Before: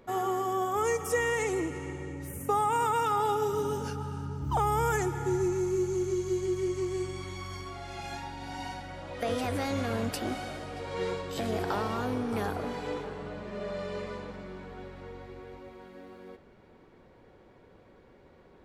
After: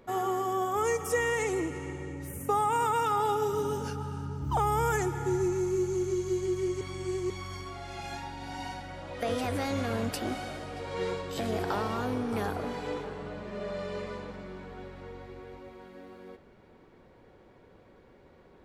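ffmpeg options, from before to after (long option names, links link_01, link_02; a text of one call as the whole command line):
ffmpeg -i in.wav -filter_complex "[0:a]asplit=3[link_01][link_02][link_03];[link_01]atrim=end=6.812[link_04];[link_02]atrim=start=6.808:end=7.302,asetpts=PTS-STARTPTS,areverse[link_05];[link_03]atrim=start=7.298[link_06];[link_04][link_05]acrossfade=duration=0.004:curve1=hsin:curve2=hsin[link_07];[link_07][link_06]acrossfade=duration=0.004:curve1=hsin:curve2=hsin" out.wav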